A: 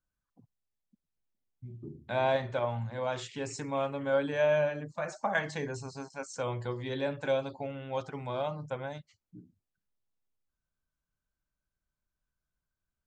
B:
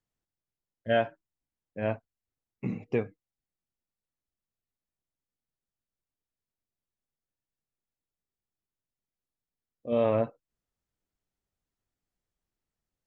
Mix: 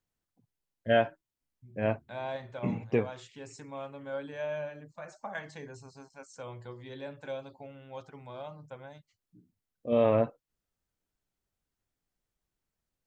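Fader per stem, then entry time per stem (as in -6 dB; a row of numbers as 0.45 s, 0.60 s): -9.0 dB, +1.0 dB; 0.00 s, 0.00 s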